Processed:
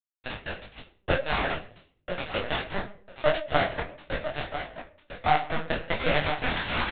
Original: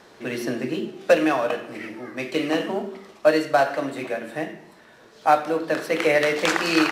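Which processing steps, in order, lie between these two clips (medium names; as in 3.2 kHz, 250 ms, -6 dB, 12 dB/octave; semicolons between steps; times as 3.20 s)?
tracing distortion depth 0.49 ms; elliptic high-pass 400 Hz, stop band 40 dB; compression 3:1, threshold -26 dBFS, peak gain reduction 11 dB; small samples zeroed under -23.5 dBFS; feedback delay 994 ms, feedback 17%, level -10 dB; reverberation RT60 0.50 s, pre-delay 7 ms, DRR 3.5 dB; LPC vocoder at 8 kHz pitch kept; detune thickener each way 51 cents; trim +7 dB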